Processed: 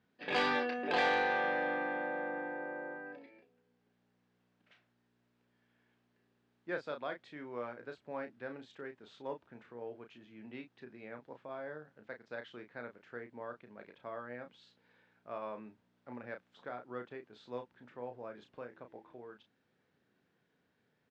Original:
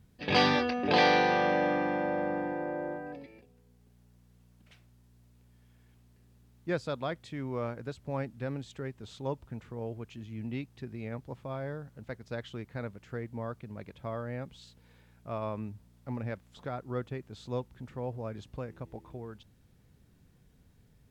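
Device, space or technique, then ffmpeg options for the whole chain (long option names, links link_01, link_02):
intercom: -filter_complex "[0:a]highpass=320,lowpass=3600,equalizer=frequency=1600:width_type=o:width=0.41:gain=5,asoftclip=type=tanh:threshold=-16.5dB,asplit=2[link_01][link_02];[link_02]adelay=33,volume=-7dB[link_03];[link_01][link_03]amix=inputs=2:normalize=0,volume=-5.5dB"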